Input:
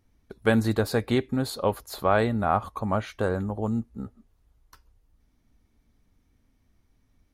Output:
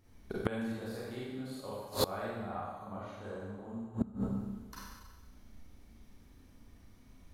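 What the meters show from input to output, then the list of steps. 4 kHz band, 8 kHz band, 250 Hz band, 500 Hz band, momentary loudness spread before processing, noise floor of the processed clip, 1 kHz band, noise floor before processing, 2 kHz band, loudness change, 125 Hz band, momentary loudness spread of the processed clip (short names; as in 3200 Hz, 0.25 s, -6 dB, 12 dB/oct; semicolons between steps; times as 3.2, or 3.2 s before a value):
-6.5 dB, -5.5 dB, -10.5 dB, -13.0 dB, 7 LU, -59 dBFS, -14.0 dB, -68 dBFS, -14.5 dB, -13.0 dB, -12.5 dB, 14 LU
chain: Schroeder reverb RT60 1.3 s, combs from 31 ms, DRR -7.5 dB; flipped gate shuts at -16 dBFS, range -25 dB; gain +1 dB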